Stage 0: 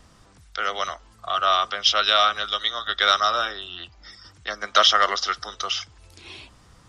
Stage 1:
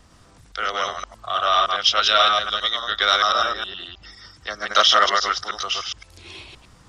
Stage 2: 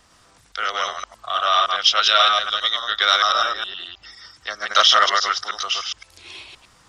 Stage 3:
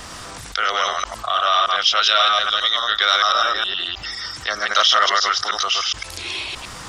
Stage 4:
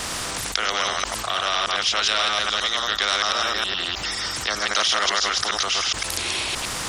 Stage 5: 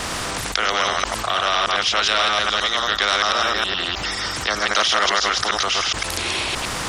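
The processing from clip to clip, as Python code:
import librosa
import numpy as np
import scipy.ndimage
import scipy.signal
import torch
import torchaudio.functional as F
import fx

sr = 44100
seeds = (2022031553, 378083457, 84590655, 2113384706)

y1 = fx.reverse_delay(x, sr, ms=104, wet_db=-1.5)
y2 = fx.low_shelf(y1, sr, hz=420.0, db=-12.0)
y2 = y2 * 10.0 ** (2.0 / 20.0)
y3 = fx.env_flatten(y2, sr, amount_pct=50)
y3 = y3 * 10.0 ** (-2.0 / 20.0)
y4 = fx.spectral_comp(y3, sr, ratio=2.0)
y5 = fx.high_shelf(y4, sr, hz=3600.0, db=-7.0)
y5 = y5 * 10.0 ** (5.0 / 20.0)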